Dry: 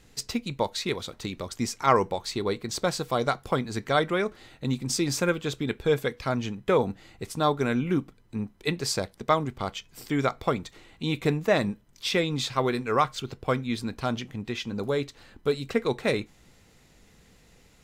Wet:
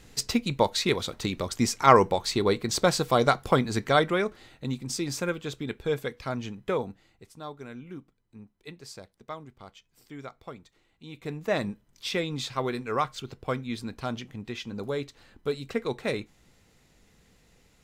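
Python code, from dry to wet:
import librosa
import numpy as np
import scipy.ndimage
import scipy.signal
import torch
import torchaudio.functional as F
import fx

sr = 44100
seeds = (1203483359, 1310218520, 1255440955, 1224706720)

y = fx.gain(x, sr, db=fx.line((3.67, 4.0), (4.82, -4.5), (6.68, -4.5), (7.29, -16.0), (11.1, -16.0), (11.53, -4.0)))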